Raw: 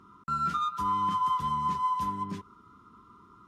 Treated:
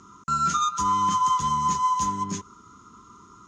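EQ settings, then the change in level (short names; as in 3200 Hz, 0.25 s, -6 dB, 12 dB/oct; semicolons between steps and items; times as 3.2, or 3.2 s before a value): synth low-pass 6600 Hz, resonance Q 12; high shelf 5200 Hz +4.5 dB; +5.0 dB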